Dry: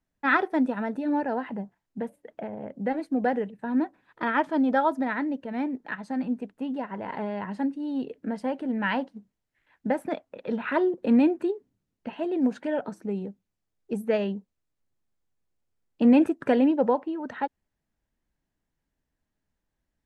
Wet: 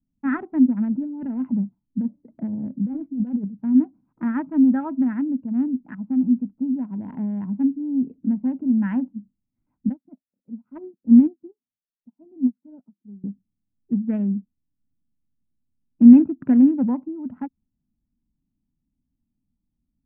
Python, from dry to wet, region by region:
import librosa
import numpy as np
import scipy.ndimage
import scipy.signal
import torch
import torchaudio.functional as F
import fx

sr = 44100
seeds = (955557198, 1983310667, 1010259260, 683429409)

y = fx.chain(x, sr, fx.notch(hz=750.0, q=10.0),
    fx.over_compress(threshold_db=-31.0, ratio=-1.0), at=(0.83, 3.45))
y = fx.chain(y, sr, fx.air_absorb(metres=370.0),
    fx.upward_expand(threshold_db=-42.0, expansion=2.5), at=(9.89, 13.24))
y = fx.wiener(y, sr, points=25)
y = scipy.signal.sosfilt(scipy.signal.butter(4, 2000.0, 'lowpass', fs=sr, output='sos'), y)
y = fx.low_shelf_res(y, sr, hz=340.0, db=11.0, q=3.0)
y = y * 10.0 ** (-7.5 / 20.0)